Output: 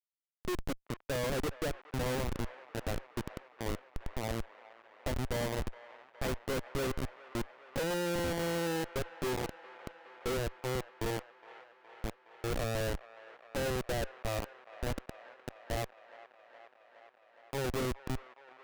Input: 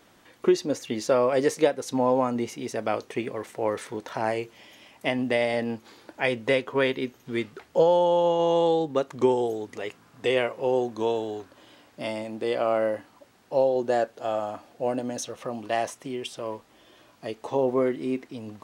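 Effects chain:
harmonic generator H 3 −17 dB, 5 −23 dB, 6 −28 dB, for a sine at −7 dBFS
comparator with hysteresis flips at −23.5 dBFS
delay with a band-pass on its return 416 ms, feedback 77%, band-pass 1,300 Hz, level −14 dB
level −4.5 dB

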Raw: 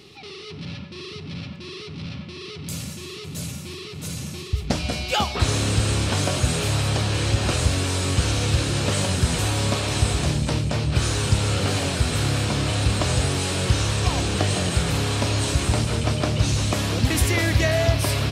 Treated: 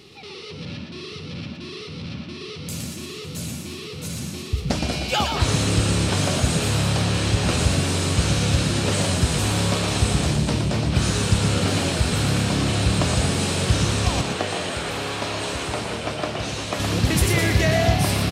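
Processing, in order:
0:14.21–0:16.80: bass and treble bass −13 dB, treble −7 dB
echo with shifted repeats 117 ms, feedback 34%, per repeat +70 Hz, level −6 dB

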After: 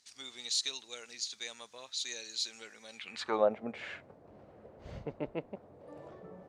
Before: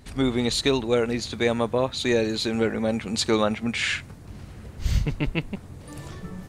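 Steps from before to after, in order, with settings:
band-pass filter sweep 5,800 Hz → 580 Hz, 0:02.89–0:03.44

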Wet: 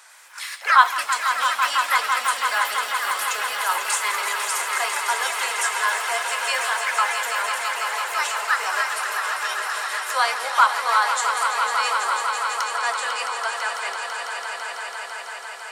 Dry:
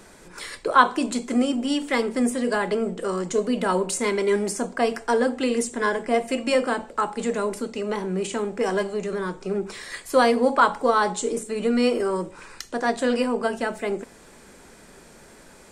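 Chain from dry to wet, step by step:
high-pass filter 900 Hz 24 dB per octave
echo that builds up and dies away 166 ms, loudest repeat 5, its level −9 dB
delay with pitch and tempo change per echo 97 ms, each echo +4 semitones, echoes 3, each echo −6 dB
level +3 dB

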